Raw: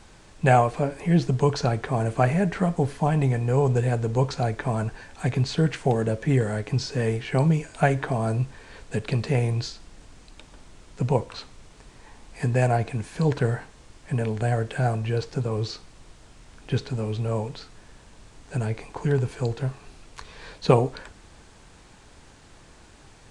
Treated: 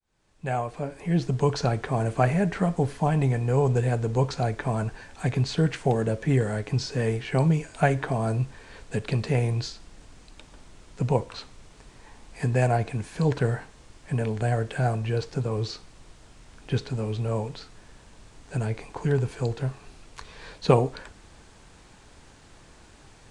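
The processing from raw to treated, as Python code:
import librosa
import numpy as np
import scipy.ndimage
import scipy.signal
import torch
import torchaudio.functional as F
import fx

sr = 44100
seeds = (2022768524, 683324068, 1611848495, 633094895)

y = fx.fade_in_head(x, sr, length_s=1.6)
y = y * 10.0 ** (-1.0 / 20.0)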